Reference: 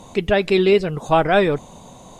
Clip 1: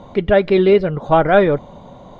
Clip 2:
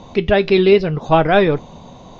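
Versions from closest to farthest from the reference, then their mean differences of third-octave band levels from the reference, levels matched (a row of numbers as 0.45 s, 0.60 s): 2, 1; 2.0 dB, 3.0 dB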